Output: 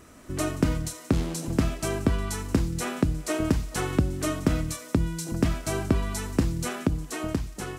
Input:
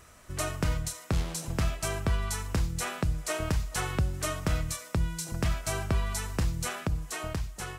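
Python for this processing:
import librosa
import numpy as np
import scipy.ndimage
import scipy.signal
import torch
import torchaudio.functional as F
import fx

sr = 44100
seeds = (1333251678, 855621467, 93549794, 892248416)

y = fx.recorder_agc(x, sr, target_db=-27.0, rise_db_per_s=6.8, max_gain_db=30)
y = fx.peak_eq(y, sr, hz=280.0, db=14.5, octaves=1.2)
y = fx.echo_wet_highpass(y, sr, ms=179, feedback_pct=63, hz=3400.0, wet_db=-16.0)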